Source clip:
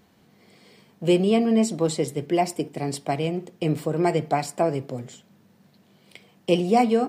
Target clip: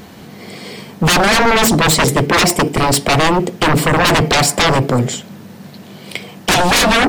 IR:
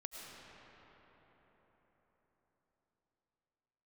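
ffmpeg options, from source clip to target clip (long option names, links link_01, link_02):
-af "aeval=exprs='0.447*sin(PI/2*10*val(0)/0.447)':channel_layout=same,volume=-1.5dB"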